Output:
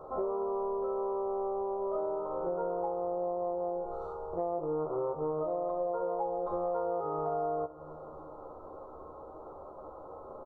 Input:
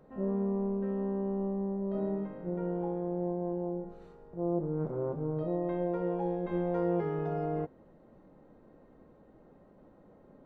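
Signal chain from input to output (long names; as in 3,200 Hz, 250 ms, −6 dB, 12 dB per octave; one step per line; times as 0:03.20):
drawn EQ curve 100 Hz 0 dB, 200 Hz −16 dB, 360 Hz +2 dB, 1,300 Hz +14 dB, 1,800 Hz −28 dB, 4,100 Hz −7 dB
ambience of single reflections 13 ms −5 dB, 63 ms −17 dB
four-comb reverb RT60 2.4 s, combs from 26 ms, DRR 17 dB
downward compressor 6 to 1, threshold −38 dBFS, peak gain reduction 16 dB
level +7 dB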